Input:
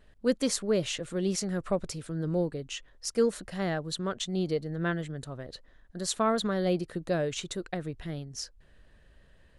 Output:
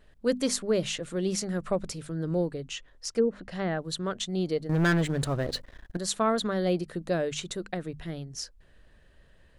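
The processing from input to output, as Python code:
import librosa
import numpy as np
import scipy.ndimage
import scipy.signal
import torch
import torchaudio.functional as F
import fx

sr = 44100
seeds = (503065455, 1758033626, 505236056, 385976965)

y = fx.env_lowpass_down(x, sr, base_hz=590.0, full_db=-20.5, at=(2.6, 3.79))
y = fx.hum_notches(y, sr, base_hz=50, count=5)
y = fx.leveller(y, sr, passes=3, at=(4.69, 5.97))
y = y * librosa.db_to_amplitude(1.0)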